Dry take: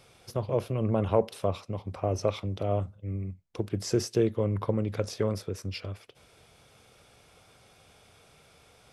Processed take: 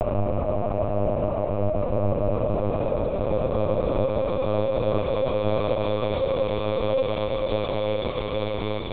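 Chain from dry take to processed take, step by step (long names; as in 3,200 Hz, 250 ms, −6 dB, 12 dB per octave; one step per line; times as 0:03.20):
extreme stretch with random phases 24×, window 0.50 s, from 0:02.04
linear-prediction vocoder at 8 kHz pitch kept
level +5 dB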